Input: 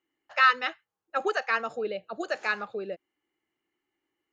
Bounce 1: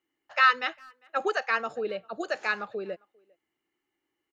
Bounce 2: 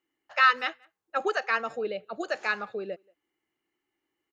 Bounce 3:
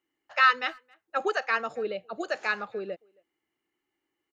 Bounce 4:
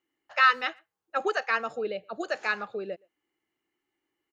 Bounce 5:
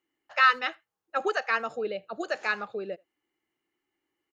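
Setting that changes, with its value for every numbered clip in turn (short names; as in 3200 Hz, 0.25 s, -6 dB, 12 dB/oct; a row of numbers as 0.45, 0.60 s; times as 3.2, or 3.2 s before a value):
speakerphone echo, time: 400, 180, 270, 120, 80 ms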